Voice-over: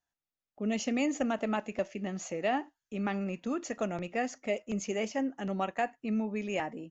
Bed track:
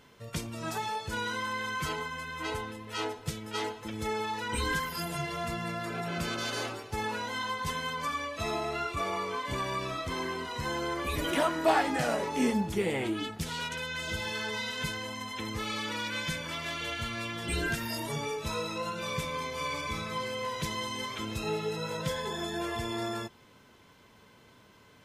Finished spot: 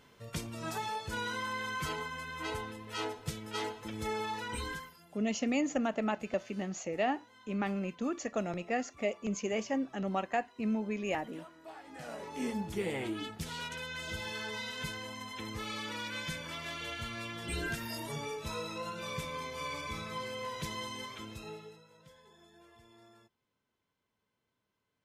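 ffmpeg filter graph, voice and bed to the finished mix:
ffmpeg -i stem1.wav -i stem2.wav -filter_complex "[0:a]adelay=4550,volume=-1dB[link_01];[1:a]volume=17dB,afade=type=out:start_time=4.34:duration=0.64:silence=0.0794328,afade=type=in:start_time=11.82:duration=1.02:silence=0.1,afade=type=out:start_time=20.84:duration=1:silence=0.0891251[link_02];[link_01][link_02]amix=inputs=2:normalize=0" out.wav

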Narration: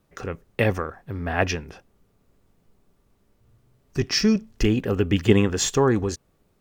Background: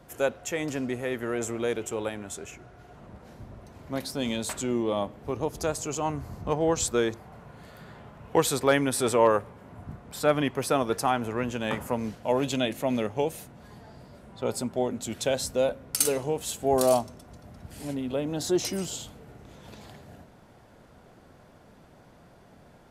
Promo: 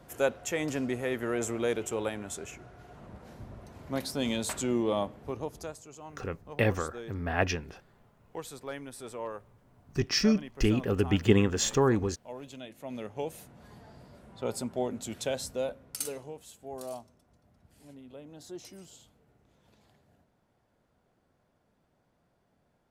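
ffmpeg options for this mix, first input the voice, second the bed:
ffmpeg -i stem1.wav -i stem2.wav -filter_complex "[0:a]adelay=6000,volume=-5dB[link_01];[1:a]volume=12.5dB,afade=type=out:start_time=4.94:duration=0.88:silence=0.149624,afade=type=in:start_time=12.73:duration=0.92:silence=0.211349,afade=type=out:start_time=15:duration=1.5:silence=0.199526[link_02];[link_01][link_02]amix=inputs=2:normalize=0" out.wav

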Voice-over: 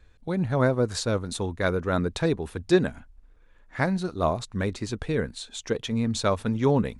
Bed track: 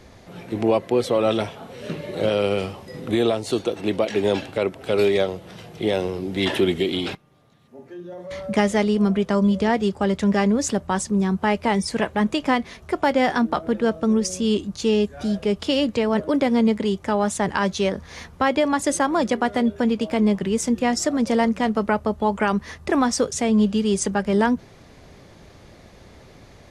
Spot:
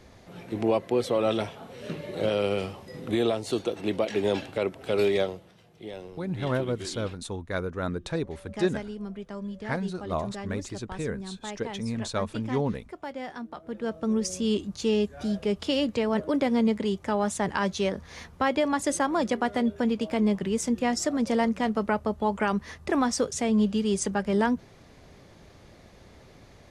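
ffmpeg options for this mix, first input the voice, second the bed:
ffmpeg -i stem1.wav -i stem2.wav -filter_complex "[0:a]adelay=5900,volume=-5.5dB[link_01];[1:a]volume=7.5dB,afade=type=out:start_time=5.24:duration=0.29:silence=0.237137,afade=type=in:start_time=13.58:duration=0.7:silence=0.237137[link_02];[link_01][link_02]amix=inputs=2:normalize=0" out.wav

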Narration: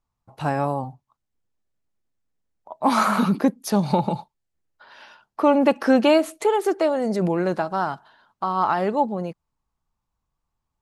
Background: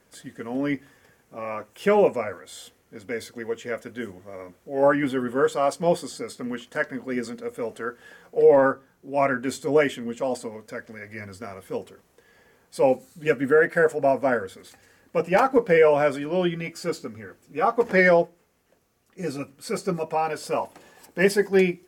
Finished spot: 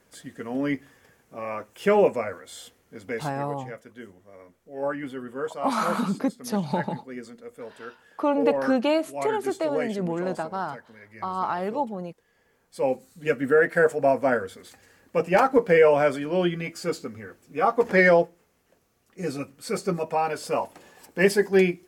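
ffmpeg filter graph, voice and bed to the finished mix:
ffmpeg -i stem1.wav -i stem2.wav -filter_complex "[0:a]adelay=2800,volume=-6dB[link_01];[1:a]volume=9dB,afade=type=out:start_time=3.13:duration=0.32:silence=0.354813,afade=type=in:start_time=12.35:duration=1.45:silence=0.334965[link_02];[link_01][link_02]amix=inputs=2:normalize=0" out.wav

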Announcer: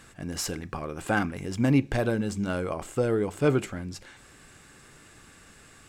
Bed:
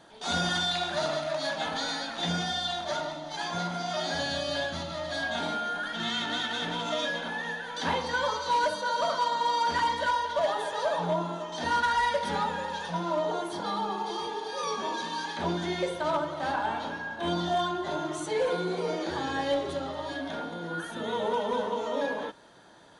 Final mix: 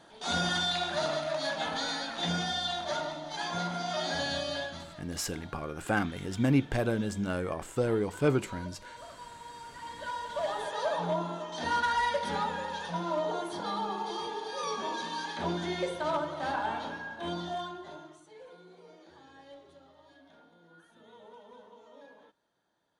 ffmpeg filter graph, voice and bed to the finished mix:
ffmpeg -i stem1.wav -i stem2.wav -filter_complex "[0:a]adelay=4800,volume=-3dB[link_01];[1:a]volume=16dB,afade=type=out:start_time=4.36:duration=0.69:silence=0.11885,afade=type=in:start_time=9.78:duration=1.01:silence=0.133352,afade=type=out:start_time=16.75:duration=1.47:silence=0.0891251[link_02];[link_01][link_02]amix=inputs=2:normalize=0" out.wav

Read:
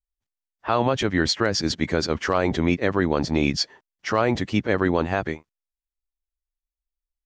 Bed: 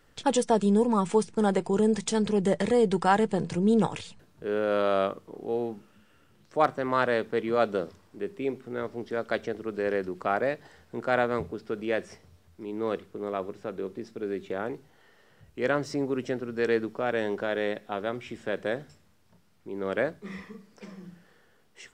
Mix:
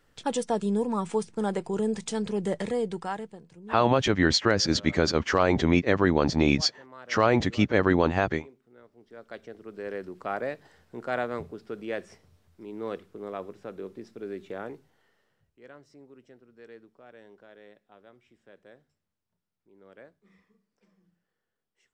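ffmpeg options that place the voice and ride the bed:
ffmpeg -i stem1.wav -i stem2.wav -filter_complex "[0:a]adelay=3050,volume=-0.5dB[link_01];[1:a]volume=13dB,afade=type=out:start_time=2.6:duration=0.81:silence=0.133352,afade=type=in:start_time=8.95:duration=1.42:silence=0.141254,afade=type=out:start_time=14.58:duration=1.02:silence=0.11885[link_02];[link_01][link_02]amix=inputs=2:normalize=0" out.wav

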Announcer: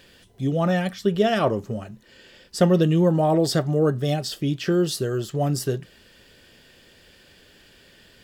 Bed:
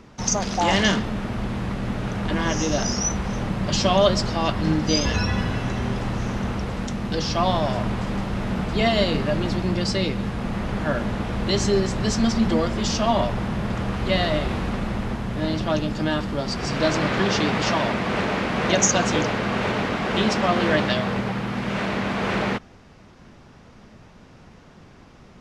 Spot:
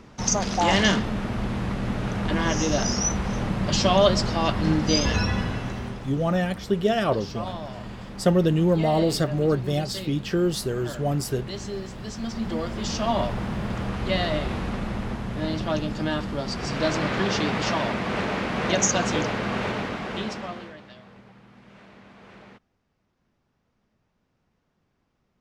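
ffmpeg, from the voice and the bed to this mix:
ffmpeg -i stem1.wav -i stem2.wav -filter_complex "[0:a]adelay=5650,volume=-2dB[link_01];[1:a]volume=9dB,afade=type=out:start_time=5.18:duration=0.92:silence=0.251189,afade=type=in:start_time=12.15:duration=1.06:silence=0.334965,afade=type=out:start_time=19.56:duration=1.18:silence=0.0841395[link_02];[link_01][link_02]amix=inputs=2:normalize=0" out.wav

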